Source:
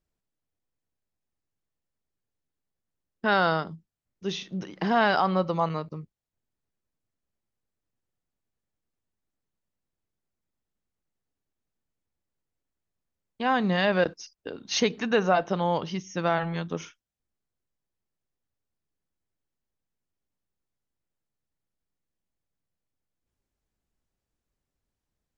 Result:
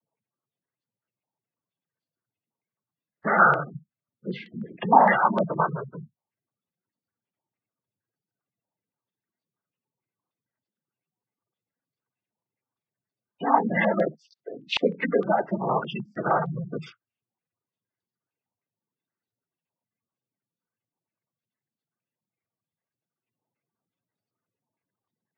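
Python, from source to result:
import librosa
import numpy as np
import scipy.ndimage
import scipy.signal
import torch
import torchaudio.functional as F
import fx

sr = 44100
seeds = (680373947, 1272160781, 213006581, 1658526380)

y = fx.noise_vocoder(x, sr, seeds[0], bands=16)
y = fx.spec_gate(y, sr, threshold_db=-15, keep='strong')
y = fx.filter_held_lowpass(y, sr, hz=6.5, low_hz=910.0, high_hz=4400.0)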